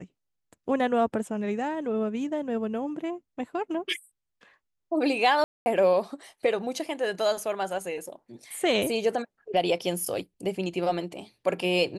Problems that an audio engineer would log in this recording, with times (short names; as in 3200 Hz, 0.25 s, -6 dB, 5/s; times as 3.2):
5.44–5.66 gap 0.22 s